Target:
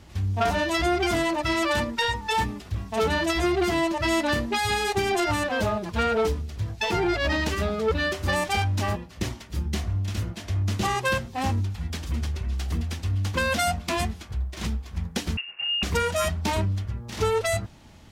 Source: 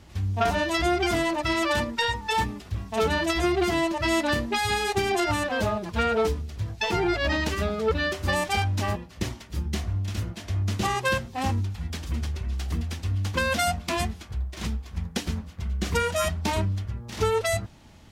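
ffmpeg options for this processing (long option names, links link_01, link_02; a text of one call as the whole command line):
ffmpeg -i in.wav -filter_complex "[0:a]asplit=2[link_01][link_02];[link_02]asoftclip=type=hard:threshold=-23dB,volume=-4dB[link_03];[link_01][link_03]amix=inputs=2:normalize=0,asettb=1/sr,asplit=3[link_04][link_05][link_06];[link_04]atrim=end=15.374[link_07];[link_05]atrim=start=15.37:end=15.83,asetpts=PTS-STARTPTS,afade=type=in:duration=0.004:curve=qsin,afade=type=out:start_time=0.456:duration=0.004:curve=qsin,lowpass=frequency=2500:width_type=q:width=0.5098,lowpass=frequency=2500:width_type=q:width=0.6013,lowpass=frequency=2500:width_type=q:width=0.9,lowpass=frequency=2500:width_type=q:width=2.563,afreqshift=-2900[link_08];[link_06]atrim=start=15.826[link_09];[link_07][link_08]acrossfade=duration=0.004:curve1=hsin:curve2=qsin[link_10];[link_10][link_09]acrossfade=duration=0.004:curve1=qsin:curve2=hsin,volume=-3dB" out.wav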